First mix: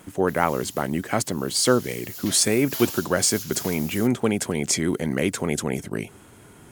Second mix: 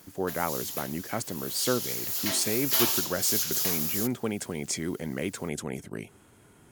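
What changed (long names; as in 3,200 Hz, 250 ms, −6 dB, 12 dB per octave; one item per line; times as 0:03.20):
speech −8.5 dB
background +7.5 dB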